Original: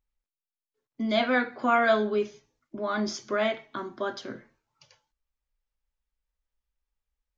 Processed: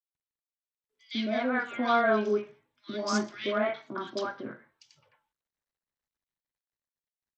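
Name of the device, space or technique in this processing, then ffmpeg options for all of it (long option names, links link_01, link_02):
Bluetooth headset: -filter_complex "[0:a]highpass=110,acrossover=split=650|2200[link_01][link_02][link_03];[link_01]adelay=150[link_04];[link_02]adelay=210[link_05];[link_04][link_05][link_03]amix=inputs=3:normalize=0,dynaudnorm=framelen=310:gausssize=11:maxgain=4dB,aresample=16000,aresample=44100,volume=-3.5dB" -ar 32000 -c:a sbc -b:a 64k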